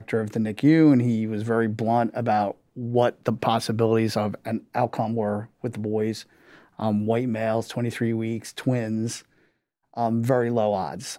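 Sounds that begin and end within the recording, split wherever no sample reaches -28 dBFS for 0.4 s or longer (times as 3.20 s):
6.80–9.18 s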